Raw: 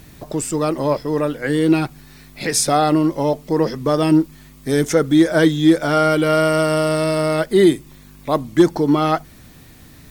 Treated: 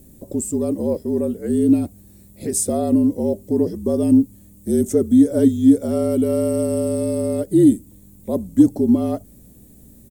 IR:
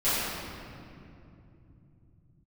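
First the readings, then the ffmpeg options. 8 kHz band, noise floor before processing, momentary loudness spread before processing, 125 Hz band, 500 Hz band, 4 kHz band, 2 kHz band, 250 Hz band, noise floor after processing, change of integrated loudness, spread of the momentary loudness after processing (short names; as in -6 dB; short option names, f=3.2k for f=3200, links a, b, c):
-2.0 dB, -44 dBFS, 9 LU, -4.0 dB, -3.5 dB, under -15 dB, under -20 dB, +1.0 dB, -47 dBFS, -1.5 dB, 12 LU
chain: -af "firequalizer=gain_entry='entry(100,0);entry(270,10);entry(610,5);entry(870,-7);entry(1400,-15);entry(3400,-10);entry(5100,-8);entry(7800,8)':delay=0.05:min_phase=1,afreqshift=-50,aeval=exprs='val(0)+0.00708*(sin(2*PI*60*n/s)+sin(2*PI*2*60*n/s)/2+sin(2*PI*3*60*n/s)/3+sin(2*PI*4*60*n/s)/4+sin(2*PI*5*60*n/s)/5)':c=same,volume=-8.5dB"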